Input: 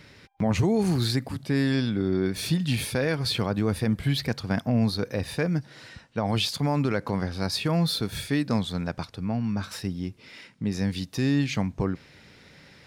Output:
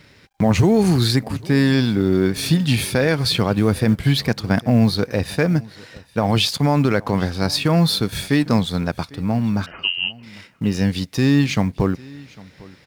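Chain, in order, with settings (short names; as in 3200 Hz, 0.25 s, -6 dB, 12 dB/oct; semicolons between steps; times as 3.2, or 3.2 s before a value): G.711 law mismatch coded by A; 9.66–10.23 inverted band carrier 3000 Hz; echo 0.801 s -22.5 dB; gain +8.5 dB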